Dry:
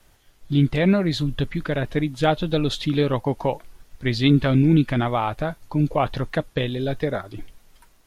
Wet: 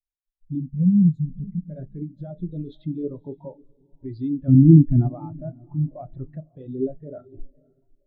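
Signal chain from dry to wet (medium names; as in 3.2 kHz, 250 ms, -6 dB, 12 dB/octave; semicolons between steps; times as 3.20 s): 0.60–1.70 s: FFT filter 120 Hz 0 dB, 210 Hz +13 dB, 310 Hz -4 dB, 530 Hz -2 dB, 950 Hz -29 dB, 2.2 kHz -5 dB, 4.2 kHz -9 dB, 7.3 kHz +8 dB; in parallel at +2.5 dB: compression, threshold -28 dBFS, peak gain reduction 22 dB; on the sum: peak limiter -13 dBFS, peak gain reduction 13.5 dB; 4.48–5.09 s: bass shelf 200 Hz +10 dB; echo that smears into a reverb 546 ms, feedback 50%, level -10 dB; on a send at -9 dB: reverberation, pre-delay 3 ms; on the sum: spectral contrast expander 2.5:1; trim +2.5 dB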